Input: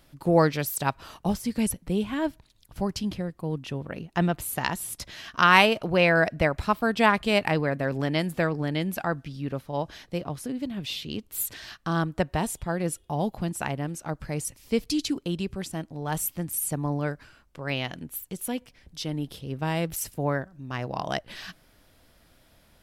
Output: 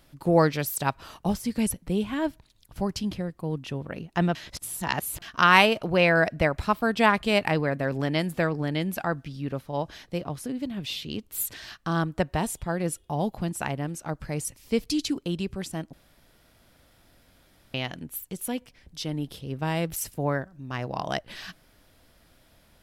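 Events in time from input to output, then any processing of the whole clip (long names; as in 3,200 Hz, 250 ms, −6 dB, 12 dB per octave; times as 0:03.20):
0:04.35–0:05.22: reverse
0:15.93–0:17.74: fill with room tone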